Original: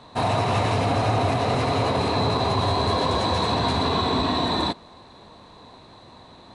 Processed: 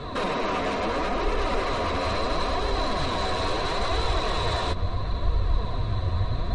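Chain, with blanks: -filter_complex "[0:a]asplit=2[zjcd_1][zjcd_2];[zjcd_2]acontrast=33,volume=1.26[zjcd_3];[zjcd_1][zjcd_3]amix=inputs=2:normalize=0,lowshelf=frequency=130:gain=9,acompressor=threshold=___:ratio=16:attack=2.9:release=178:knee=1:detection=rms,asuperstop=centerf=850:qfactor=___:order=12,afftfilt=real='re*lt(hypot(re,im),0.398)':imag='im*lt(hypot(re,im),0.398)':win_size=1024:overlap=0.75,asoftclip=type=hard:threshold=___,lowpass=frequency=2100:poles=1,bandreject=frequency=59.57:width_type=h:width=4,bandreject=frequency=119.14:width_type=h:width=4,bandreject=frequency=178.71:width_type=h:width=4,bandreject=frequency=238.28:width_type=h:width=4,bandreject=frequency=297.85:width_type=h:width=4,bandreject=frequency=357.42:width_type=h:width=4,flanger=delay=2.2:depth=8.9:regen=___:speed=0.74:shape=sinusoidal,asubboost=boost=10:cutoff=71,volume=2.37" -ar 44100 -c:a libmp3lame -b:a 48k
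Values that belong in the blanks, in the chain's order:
0.224, 5.2, 0.0501, 30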